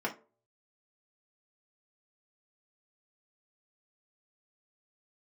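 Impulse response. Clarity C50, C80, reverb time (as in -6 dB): 13.5 dB, 21.0 dB, 0.40 s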